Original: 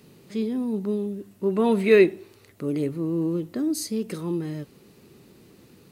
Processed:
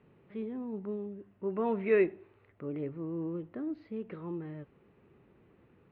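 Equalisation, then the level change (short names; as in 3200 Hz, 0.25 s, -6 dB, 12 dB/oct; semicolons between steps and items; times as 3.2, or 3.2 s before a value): Bessel low-pass 1600 Hz, order 8; bell 230 Hz -7.5 dB 2.3 oct; -4.5 dB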